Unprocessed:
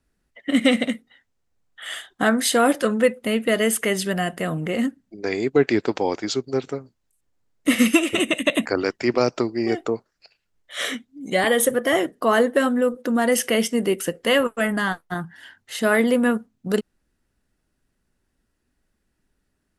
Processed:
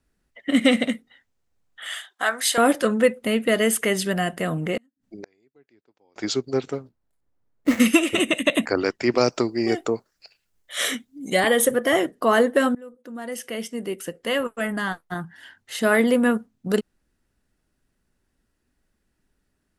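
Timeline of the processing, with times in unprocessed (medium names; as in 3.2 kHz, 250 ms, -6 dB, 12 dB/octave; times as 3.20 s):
1.87–2.58 s: high-pass 810 Hz
4.77–6.16 s: inverted gate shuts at -23 dBFS, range -40 dB
6.73–7.80 s: median filter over 15 samples
9.13–11.40 s: treble shelf 6.4 kHz +10.5 dB
12.75–15.93 s: fade in, from -24 dB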